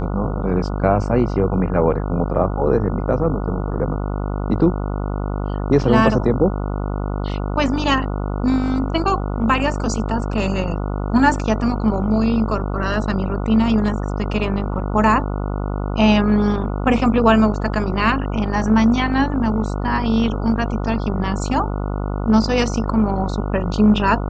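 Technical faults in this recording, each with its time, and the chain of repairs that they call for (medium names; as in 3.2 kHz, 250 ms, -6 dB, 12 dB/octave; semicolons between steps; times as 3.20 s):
buzz 50 Hz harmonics 29 -23 dBFS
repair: de-hum 50 Hz, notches 29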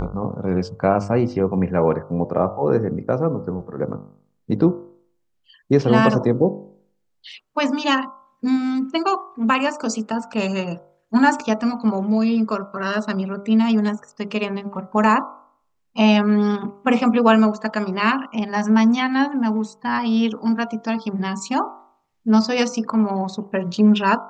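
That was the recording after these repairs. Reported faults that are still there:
nothing left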